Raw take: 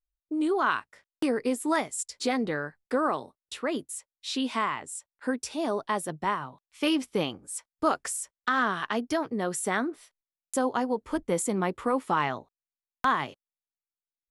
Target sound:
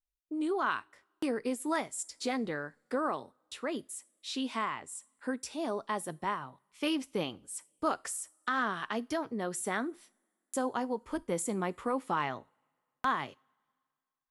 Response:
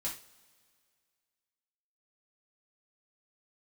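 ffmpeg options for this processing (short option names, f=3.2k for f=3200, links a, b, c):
-filter_complex "[0:a]asplit=2[a][b];[1:a]atrim=start_sample=2205,highshelf=f=5.5k:g=11[c];[b][c]afir=irnorm=-1:irlink=0,volume=-21dB[d];[a][d]amix=inputs=2:normalize=0,volume=-6dB"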